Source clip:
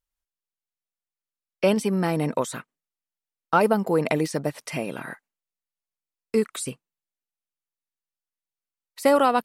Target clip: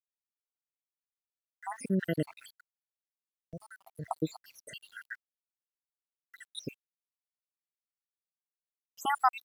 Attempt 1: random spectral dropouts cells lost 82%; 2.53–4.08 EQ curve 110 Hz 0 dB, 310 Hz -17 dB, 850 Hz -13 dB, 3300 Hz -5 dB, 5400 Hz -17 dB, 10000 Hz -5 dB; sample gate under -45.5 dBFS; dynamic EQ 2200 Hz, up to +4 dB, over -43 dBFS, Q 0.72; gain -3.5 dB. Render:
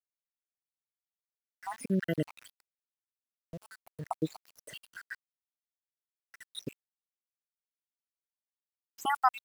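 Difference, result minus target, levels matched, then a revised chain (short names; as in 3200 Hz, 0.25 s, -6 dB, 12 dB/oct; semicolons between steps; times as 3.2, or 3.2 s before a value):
sample gate: distortion +12 dB
random spectral dropouts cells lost 82%; 2.53–4.08 EQ curve 110 Hz 0 dB, 310 Hz -17 dB, 850 Hz -13 dB, 3300 Hz -5 dB, 5400 Hz -17 dB, 10000 Hz -5 dB; sample gate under -57 dBFS; dynamic EQ 2200 Hz, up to +4 dB, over -43 dBFS, Q 0.72; gain -3.5 dB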